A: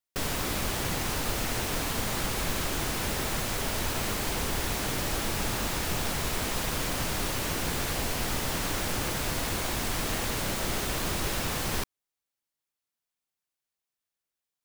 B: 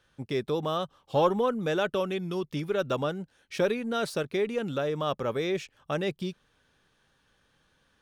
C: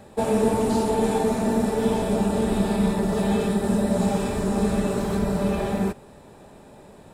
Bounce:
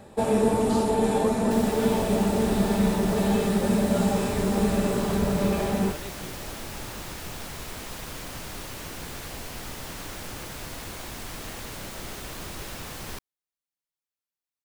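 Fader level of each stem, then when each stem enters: -7.0 dB, -12.0 dB, -1.0 dB; 1.35 s, 0.00 s, 0.00 s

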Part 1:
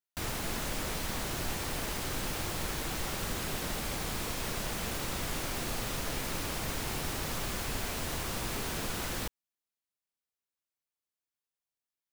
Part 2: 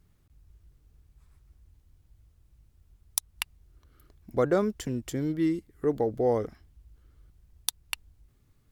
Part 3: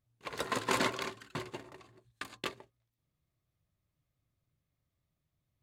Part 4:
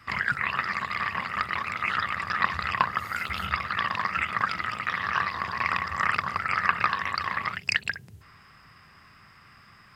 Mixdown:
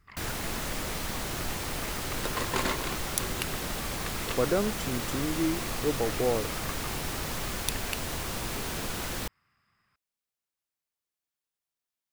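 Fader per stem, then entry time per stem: +1.5 dB, -2.5 dB, 0.0 dB, -19.5 dB; 0.00 s, 0.00 s, 1.85 s, 0.00 s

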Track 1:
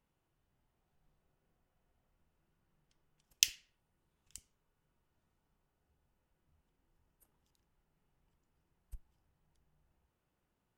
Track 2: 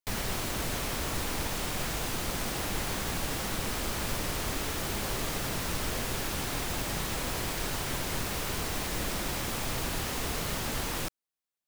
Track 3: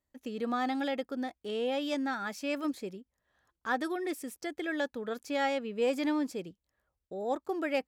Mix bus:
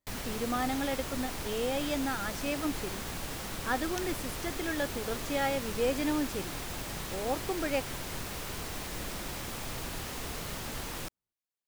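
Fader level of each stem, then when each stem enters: -15.0 dB, -5.5 dB, -0.5 dB; 0.55 s, 0.00 s, 0.00 s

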